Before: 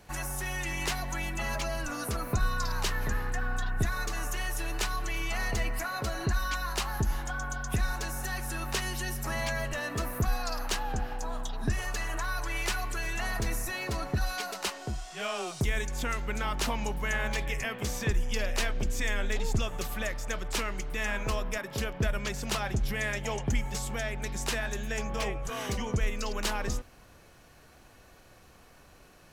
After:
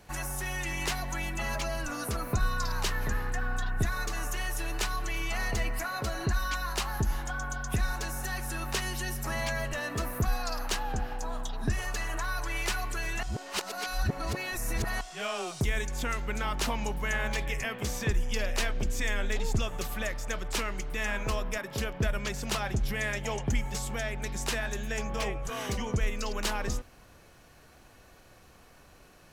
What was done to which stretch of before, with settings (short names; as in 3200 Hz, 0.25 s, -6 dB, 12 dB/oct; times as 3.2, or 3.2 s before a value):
13.23–15.01 reverse